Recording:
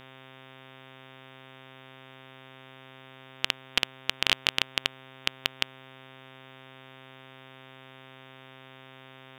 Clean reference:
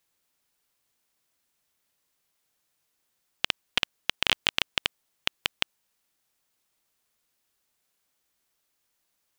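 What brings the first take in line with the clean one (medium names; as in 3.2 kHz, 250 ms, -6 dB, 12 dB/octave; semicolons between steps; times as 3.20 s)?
de-hum 131.8 Hz, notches 28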